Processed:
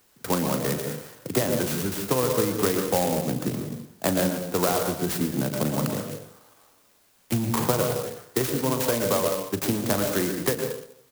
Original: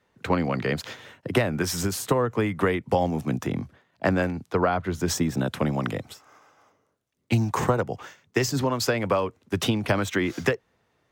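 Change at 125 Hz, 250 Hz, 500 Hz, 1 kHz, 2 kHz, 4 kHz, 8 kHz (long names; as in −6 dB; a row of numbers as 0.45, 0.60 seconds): −2.0, 0.0, +0.5, −1.5, −4.0, +0.5, +4.5 decibels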